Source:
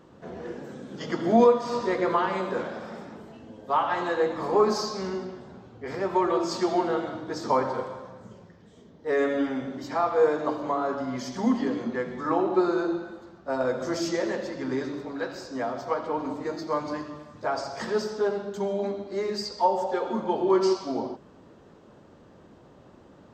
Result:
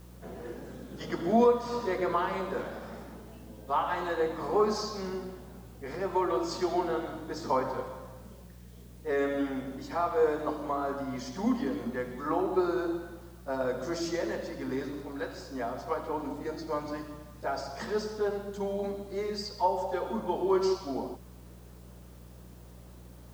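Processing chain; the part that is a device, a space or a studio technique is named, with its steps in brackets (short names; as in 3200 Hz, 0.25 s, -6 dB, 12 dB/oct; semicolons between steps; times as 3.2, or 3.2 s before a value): 16.22–17.7 notch 1100 Hz, Q 11; video cassette with head-switching buzz (buzz 60 Hz, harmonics 3, -46 dBFS -4 dB/oct; white noise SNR 31 dB); gain -4.5 dB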